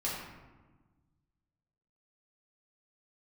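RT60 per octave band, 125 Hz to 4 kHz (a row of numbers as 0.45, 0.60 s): 2.1, 1.8, 1.3, 1.3, 1.0, 0.65 s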